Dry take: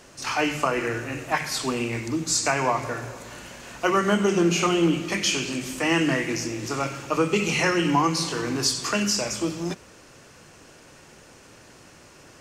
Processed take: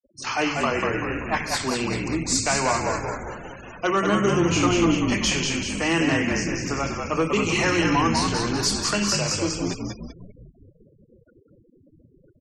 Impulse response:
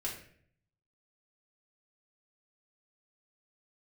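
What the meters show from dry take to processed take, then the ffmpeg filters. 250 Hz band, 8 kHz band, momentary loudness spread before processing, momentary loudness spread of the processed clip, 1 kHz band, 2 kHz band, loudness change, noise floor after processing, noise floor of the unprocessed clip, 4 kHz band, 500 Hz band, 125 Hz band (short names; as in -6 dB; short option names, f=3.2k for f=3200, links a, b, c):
+1.5 dB, +1.5 dB, 10 LU, 9 LU, +1.0 dB, +1.5 dB, +1.0 dB, -59 dBFS, -50 dBFS, +1.5 dB, +0.5 dB, +3.0 dB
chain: -filter_complex "[0:a]asoftclip=type=hard:threshold=-15.5dB,asplit=8[a][b][c][d][e][f][g][h];[b]adelay=193,afreqshift=-55,volume=-4dB[i];[c]adelay=386,afreqshift=-110,volume=-9.7dB[j];[d]adelay=579,afreqshift=-165,volume=-15.4dB[k];[e]adelay=772,afreqshift=-220,volume=-21dB[l];[f]adelay=965,afreqshift=-275,volume=-26.7dB[m];[g]adelay=1158,afreqshift=-330,volume=-32.4dB[n];[h]adelay=1351,afreqshift=-385,volume=-38.1dB[o];[a][i][j][k][l][m][n][o]amix=inputs=8:normalize=0,afftfilt=real='re*gte(hypot(re,im),0.0158)':imag='im*gte(hypot(re,im),0.0158)':win_size=1024:overlap=0.75"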